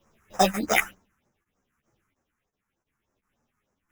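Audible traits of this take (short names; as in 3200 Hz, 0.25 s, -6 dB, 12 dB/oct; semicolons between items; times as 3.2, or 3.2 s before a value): aliases and images of a low sample rate 4400 Hz, jitter 0%; phasing stages 4, 3.3 Hz, lowest notch 540–3300 Hz; tremolo triangle 0.67 Hz, depth 55%; a shimmering, thickened sound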